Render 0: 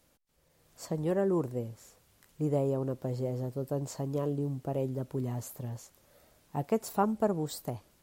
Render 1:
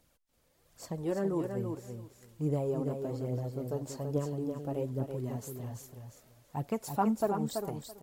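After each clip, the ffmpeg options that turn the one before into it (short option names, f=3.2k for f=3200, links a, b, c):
-filter_complex "[0:a]aphaser=in_gain=1:out_gain=1:delay=4.8:decay=0.48:speed=1.2:type=triangular,asplit=2[a][b];[b]aecho=0:1:332|664|996:0.501|0.0852|0.0145[c];[a][c]amix=inputs=2:normalize=0,volume=-3.5dB"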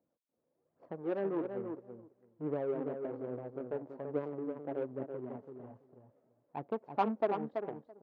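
-af "adynamicsmooth=sensitivity=2.5:basefreq=520,highpass=310,lowpass=3.3k"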